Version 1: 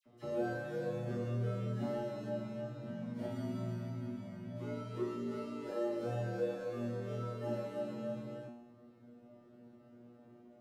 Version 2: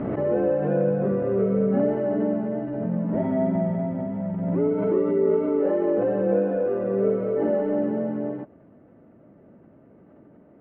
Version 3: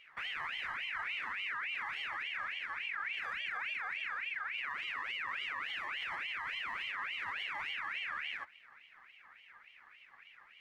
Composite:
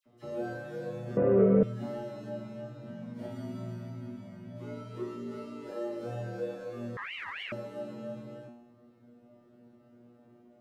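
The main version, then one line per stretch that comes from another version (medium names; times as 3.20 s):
1
1.17–1.63 s: from 2
6.97–7.52 s: from 3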